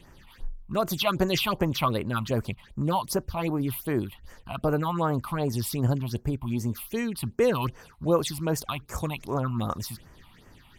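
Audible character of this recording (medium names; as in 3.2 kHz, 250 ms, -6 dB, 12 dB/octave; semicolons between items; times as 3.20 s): phasing stages 6, 2.6 Hz, lowest notch 420–3800 Hz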